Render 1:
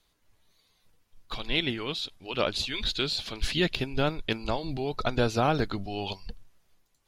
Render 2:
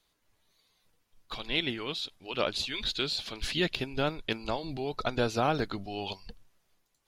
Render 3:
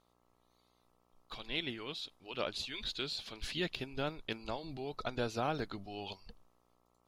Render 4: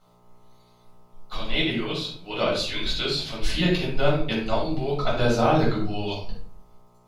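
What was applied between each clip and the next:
low shelf 130 Hz -6.5 dB; gain -2 dB
buzz 60 Hz, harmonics 22, -67 dBFS -1 dB/oct; gain -7.5 dB
shoebox room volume 550 m³, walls furnished, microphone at 7.1 m; gain +3.5 dB

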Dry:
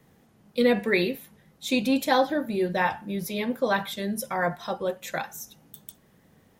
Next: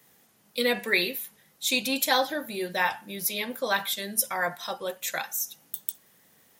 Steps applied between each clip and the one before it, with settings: tilt +3.5 dB/oct; gain -1.5 dB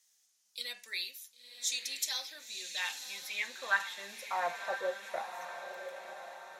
band-pass sweep 6100 Hz -> 620 Hz, 2.14–4.78; diffused feedback echo 1.021 s, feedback 50%, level -8 dB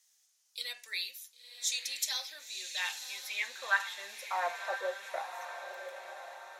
HPF 480 Hz 12 dB/oct; gain +1 dB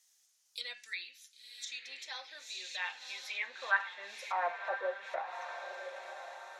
spectral gain 0.74–1.85, 350–1300 Hz -11 dB; treble ducked by the level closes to 2300 Hz, closed at -34 dBFS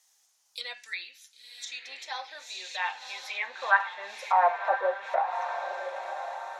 bell 840 Hz +10.5 dB 1.2 oct; gain +3 dB

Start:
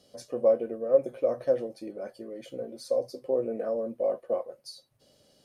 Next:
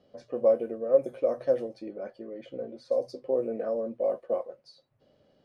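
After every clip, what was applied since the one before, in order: notches 60/120 Hz; low-pass opened by the level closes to 2000 Hz, open at -22 dBFS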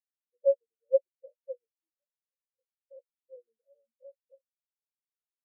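spectral expander 4:1; gain -2.5 dB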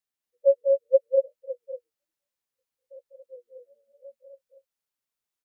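loudspeakers at several distances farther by 68 m -6 dB, 80 m -3 dB; gain +4.5 dB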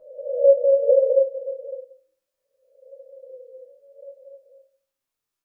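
spectral swells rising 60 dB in 0.84 s; shoebox room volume 49 m³, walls mixed, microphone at 0.61 m; gain -1.5 dB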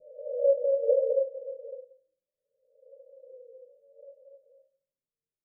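rippled Chebyshev low-pass 630 Hz, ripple 9 dB

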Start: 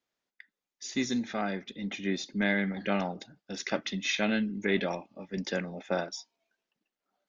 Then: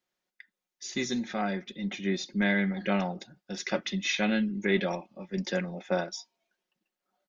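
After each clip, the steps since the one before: comb 5.5 ms, depth 47%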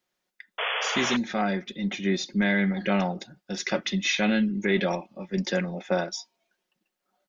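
in parallel at +2 dB: limiter -20 dBFS, peak gain reduction 7 dB; on the sum: painted sound noise, 0.58–1.17, 420–3500 Hz -26 dBFS; gain -2.5 dB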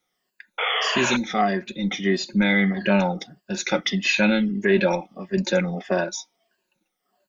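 moving spectral ripple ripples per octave 1.4, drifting -1.6 Hz, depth 13 dB; gain +2.5 dB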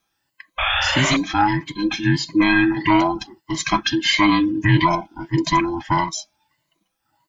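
band inversion scrambler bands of 500 Hz; gain +3.5 dB

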